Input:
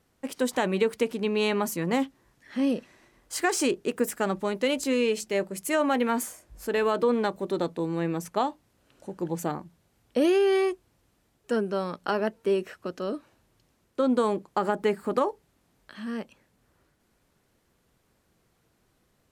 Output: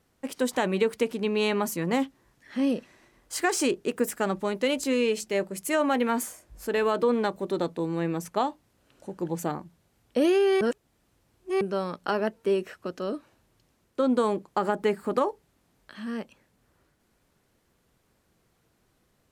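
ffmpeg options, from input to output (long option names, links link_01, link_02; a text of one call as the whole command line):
ffmpeg -i in.wav -filter_complex "[0:a]asplit=3[link_01][link_02][link_03];[link_01]atrim=end=10.612[link_04];[link_02]atrim=start=10.608:end=11.612,asetpts=PTS-STARTPTS,areverse[link_05];[link_03]atrim=start=11.608[link_06];[link_04][link_05]acrossfade=duration=0.004:curve1=hsin:curve2=hsin[link_07];[link_07][link_06]acrossfade=duration=0.004:curve1=hsin:curve2=hsin" out.wav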